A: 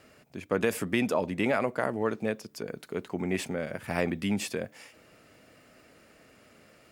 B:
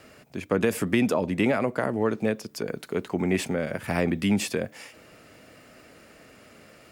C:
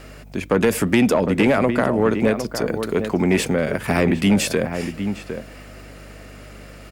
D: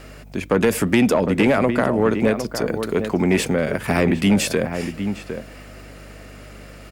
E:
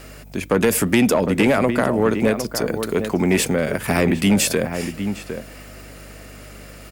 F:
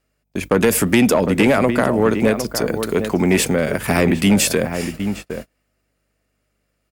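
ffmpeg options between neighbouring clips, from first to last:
ffmpeg -i in.wav -filter_complex "[0:a]acrossover=split=390[link_01][link_02];[link_02]acompressor=threshold=-34dB:ratio=2[link_03];[link_01][link_03]amix=inputs=2:normalize=0,volume=6dB" out.wav
ffmpeg -i in.wav -filter_complex "[0:a]asplit=2[link_01][link_02];[link_02]adelay=758,volume=-9dB,highshelf=frequency=4000:gain=-17.1[link_03];[link_01][link_03]amix=inputs=2:normalize=0,aeval=exprs='val(0)+0.00355*(sin(2*PI*50*n/s)+sin(2*PI*2*50*n/s)/2+sin(2*PI*3*50*n/s)/3+sin(2*PI*4*50*n/s)/4+sin(2*PI*5*50*n/s)/5)':channel_layout=same,aeval=exprs='0.355*sin(PI/2*1.58*val(0)/0.355)':channel_layout=same" out.wav
ffmpeg -i in.wav -af anull out.wav
ffmpeg -i in.wav -af "highshelf=frequency=6700:gain=9.5" out.wav
ffmpeg -i in.wav -af "agate=range=-33dB:threshold=-30dB:ratio=16:detection=peak,volume=2dB" out.wav

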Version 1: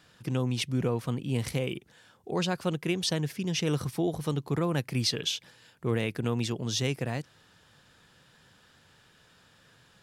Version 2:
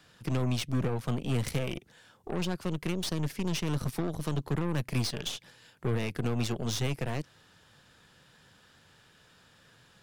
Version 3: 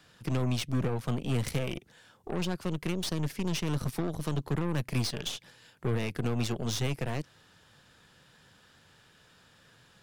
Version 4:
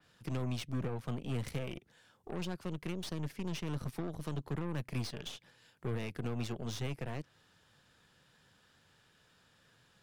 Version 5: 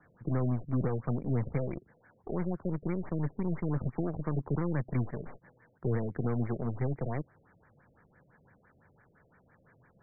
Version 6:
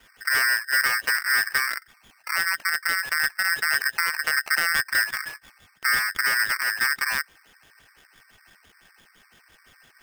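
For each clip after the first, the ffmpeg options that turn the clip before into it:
ffmpeg -i in.wav -filter_complex "[0:a]acrossover=split=210[link_01][link_02];[link_02]acompressor=threshold=-33dB:ratio=6[link_03];[link_01][link_03]amix=inputs=2:normalize=0,aeval=exprs='0.1*(cos(1*acos(clip(val(0)/0.1,-1,1)))-cos(1*PI/2))+0.0126*(cos(8*acos(clip(val(0)/0.1,-1,1)))-cos(8*PI/2))':channel_layout=same" out.wav
ffmpeg -i in.wav -af anull out.wav
ffmpeg -i in.wav -af "adynamicequalizer=threshold=0.00282:dfrequency=3600:dqfactor=0.7:tfrequency=3600:tqfactor=0.7:attack=5:release=100:ratio=0.375:range=2.5:mode=cutabove:tftype=highshelf,volume=-7dB" out.wav
ffmpeg -i in.wav -af "afftfilt=real='re*lt(b*sr/1024,670*pow(2400/670,0.5+0.5*sin(2*PI*5.9*pts/sr)))':imag='im*lt(b*sr/1024,670*pow(2400/670,0.5+0.5*sin(2*PI*5.9*pts/sr)))':win_size=1024:overlap=0.75,volume=6.5dB" out.wav
ffmpeg -i in.wav -af "aeval=exprs='val(0)*sgn(sin(2*PI*1700*n/s))':channel_layout=same,volume=7.5dB" out.wav

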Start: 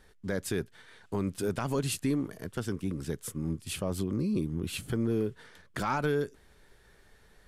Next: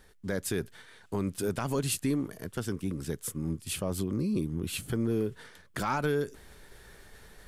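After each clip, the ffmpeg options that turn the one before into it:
ffmpeg -i in.wav -af "highshelf=frequency=8500:gain=6.5,areverse,acompressor=mode=upward:threshold=-42dB:ratio=2.5,areverse" out.wav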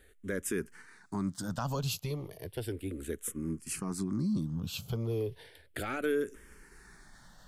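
ffmpeg -i in.wav -filter_complex "[0:a]asplit=2[link_01][link_02];[link_02]afreqshift=-0.34[link_03];[link_01][link_03]amix=inputs=2:normalize=1" out.wav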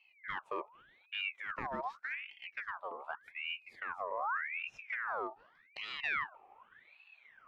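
ffmpeg -i in.wav -af "adynamicsmooth=sensitivity=1:basefreq=1000,aeval=exprs='val(0)*sin(2*PI*1700*n/s+1700*0.55/0.85*sin(2*PI*0.85*n/s))':channel_layout=same,volume=-2dB" out.wav

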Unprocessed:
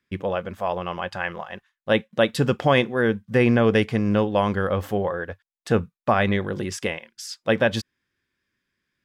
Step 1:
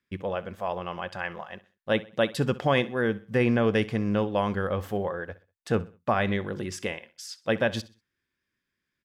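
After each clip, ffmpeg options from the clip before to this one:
ffmpeg -i in.wav -af "aecho=1:1:64|128|192:0.112|0.0404|0.0145,volume=-5dB" out.wav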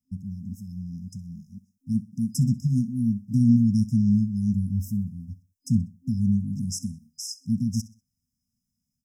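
ffmpeg -i in.wav -af "afftfilt=real='re*(1-between(b*sr/4096,260,5000))':imag='im*(1-between(b*sr/4096,260,5000))':win_size=4096:overlap=0.75,dynaudnorm=framelen=210:gausssize=3:maxgain=6dB,volume=1.5dB" out.wav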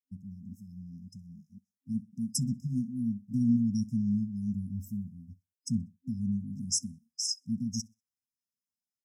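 ffmpeg -i in.wav -af "afftdn=noise_reduction=18:noise_floor=-36,bass=frequency=250:gain=-12,treble=frequency=4000:gain=6" out.wav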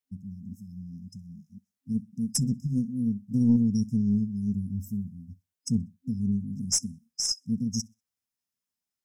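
ffmpeg -i in.wav -af "aeval=exprs='0.188*(cos(1*acos(clip(val(0)/0.188,-1,1)))-cos(1*PI/2))+0.0075*(cos(4*acos(clip(val(0)/0.188,-1,1)))-cos(4*PI/2))':channel_layout=same,volume=4dB" out.wav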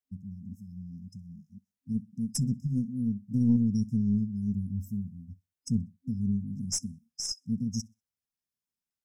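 ffmpeg -i in.wav -af "lowshelf=frequency=230:gain=7,volume=-6dB" out.wav

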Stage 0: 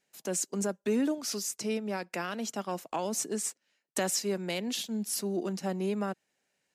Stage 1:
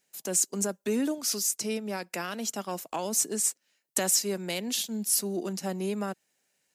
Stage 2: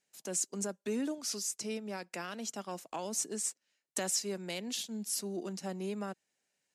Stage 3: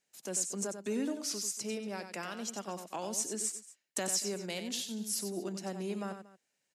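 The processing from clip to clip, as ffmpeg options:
ffmpeg -i in.wav -af "highshelf=frequency=6000:gain=11.5" out.wav
ffmpeg -i in.wav -af "lowpass=9200,volume=-6.5dB" out.wav
ffmpeg -i in.wav -af "aecho=1:1:93|233:0.376|0.106" out.wav

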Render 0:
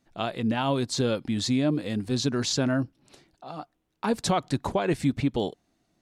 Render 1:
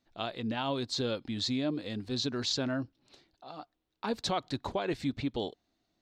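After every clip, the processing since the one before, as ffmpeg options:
ffmpeg -i in.wav -af "equalizer=frequency=160:width_type=o:width=0.67:gain=-6,equalizer=frequency=4000:width_type=o:width=0.67:gain=7,equalizer=frequency=10000:width_type=o:width=0.67:gain=-12,volume=-6.5dB" out.wav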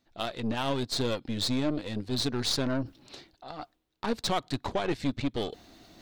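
ffmpeg -i in.wav -af "aeval=exprs='0.106*(cos(1*acos(clip(val(0)/0.106,-1,1)))-cos(1*PI/2))+0.0075*(cos(4*acos(clip(val(0)/0.106,-1,1)))-cos(4*PI/2))+0.00668*(cos(8*acos(clip(val(0)/0.106,-1,1)))-cos(8*PI/2))':channel_layout=same,areverse,acompressor=mode=upward:threshold=-38dB:ratio=2.5,areverse,volume=2.5dB" out.wav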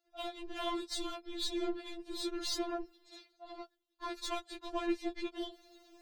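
ffmpeg -i in.wav -af "afftfilt=real='hypot(re,im)*cos(2*PI*random(0))':imag='hypot(re,im)*sin(2*PI*random(1))':win_size=512:overlap=0.75,afftfilt=real='re*4*eq(mod(b,16),0)':imag='im*4*eq(mod(b,16),0)':win_size=2048:overlap=0.75,volume=1dB" out.wav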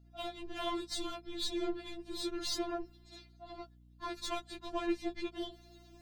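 ffmpeg -i in.wav -af "aeval=exprs='val(0)+0.00112*(sin(2*PI*60*n/s)+sin(2*PI*2*60*n/s)/2+sin(2*PI*3*60*n/s)/3+sin(2*PI*4*60*n/s)/4+sin(2*PI*5*60*n/s)/5)':channel_layout=same" out.wav

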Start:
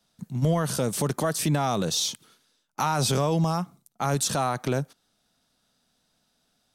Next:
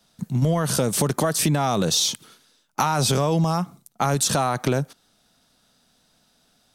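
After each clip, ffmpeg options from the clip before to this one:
ffmpeg -i in.wav -af "acompressor=threshold=-25dB:ratio=6,volume=8dB" out.wav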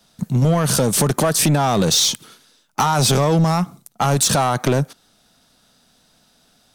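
ffmpeg -i in.wav -af "asoftclip=type=tanh:threshold=-16.5dB,aeval=exprs='0.15*(cos(1*acos(clip(val(0)/0.15,-1,1)))-cos(1*PI/2))+0.00376*(cos(7*acos(clip(val(0)/0.15,-1,1)))-cos(7*PI/2))+0.00188*(cos(8*acos(clip(val(0)/0.15,-1,1)))-cos(8*PI/2))':channel_layout=same,volume=7dB" out.wav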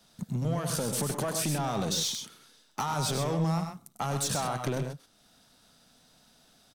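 ffmpeg -i in.wav -filter_complex "[0:a]acompressor=threshold=-41dB:ratio=1.5,asplit=2[link_01][link_02];[link_02]aecho=0:1:98|129:0.355|0.398[link_03];[link_01][link_03]amix=inputs=2:normalize=0,volume=-5dB" out.wav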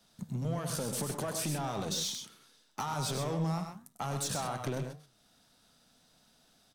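ffmpeg -i in.wav -af "flanger=delay=9.8:depth=5.7:regen=-83:speed=1.8:shape=sinusoidal" out.wav

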